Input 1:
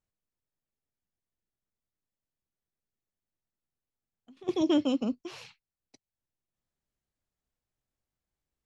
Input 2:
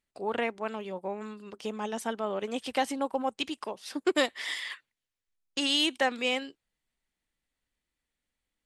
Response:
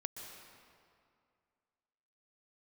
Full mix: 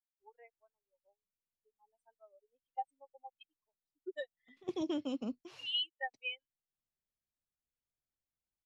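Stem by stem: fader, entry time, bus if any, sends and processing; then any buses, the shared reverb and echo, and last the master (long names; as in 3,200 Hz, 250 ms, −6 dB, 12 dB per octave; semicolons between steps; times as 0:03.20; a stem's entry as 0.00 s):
−4.0 dB, 0.20 s, no send, expander for the loud parts 1.5 to 1, over −36 dBFS
−5.0 dB, 0.00 s, no send, high-pass filter 930 Hz 6 dB per octave; parametric band 9,200 Hz +8.5 dB 1.6 octaves; every bin expanded away from the loudest bin 4 to 1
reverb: not used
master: downward compressor 6 to 1, threshold −33 dBFS, peak gain reduction 11 dB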